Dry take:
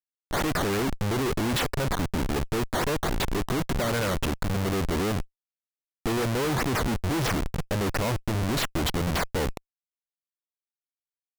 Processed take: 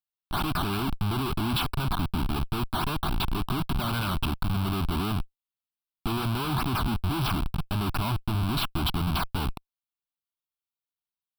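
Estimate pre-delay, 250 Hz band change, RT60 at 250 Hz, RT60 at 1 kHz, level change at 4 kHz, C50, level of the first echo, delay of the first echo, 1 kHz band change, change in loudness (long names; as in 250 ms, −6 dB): no reverb audible, −1.5 dB, no reverb audible, no reverb audible, +0.5 dB, no reverb audible, no echo audible, no echo audible, 0.0 dB, −1.5 dB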